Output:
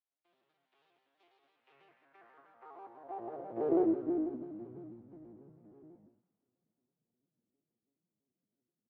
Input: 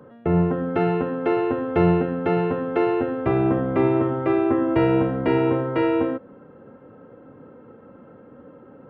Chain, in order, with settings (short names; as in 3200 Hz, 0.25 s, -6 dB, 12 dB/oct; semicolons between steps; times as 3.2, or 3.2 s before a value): arpeggiated vocoder minor triad, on A#2, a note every 0.112 s; Doppler pass-by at 3.77, 19 m/s, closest 2.9 m; HPF 150 Hz 12 dB/oct; comb 2.6 ms, depth 37%; half-wave rectifier; band-pass sweep 3400 Hz -> 200 Hz, 1.44–4.61; on a send: thin delay 0.113 s, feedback 82%, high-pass 1600 Hz, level -14 dB; on the sum: non-linear reverb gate 0.14 s rising, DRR 6 dB; shaped vibrato square 6.1 Hz, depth 100 cents